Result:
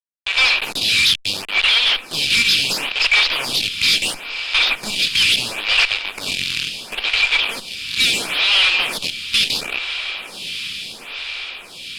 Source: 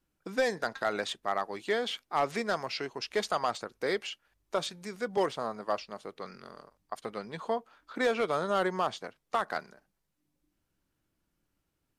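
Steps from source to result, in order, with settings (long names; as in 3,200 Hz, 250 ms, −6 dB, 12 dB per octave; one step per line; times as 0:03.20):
adaptive Wiener filter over 9 samples
transient designer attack −2 dB, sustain +11 dB
high-shelf EQ 2,900 Hz +11 dB
0:01.07–0:02.51: downward compressor 6 to 1, threshold −30 dBFS, peak gain reduction 9.5 dB
leveller curve on the samples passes 5
brick-wall band-pass 2,300–5,300 Hz
fuzz pedal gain 41 dB, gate −42 dBFS
high-frequency loss of the air 60 metres
feedback delay with all-pass diffusion 1,669 ms, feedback 57%, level −11 dB
phaser with staggered stages 0.73 Hz
level +4 dB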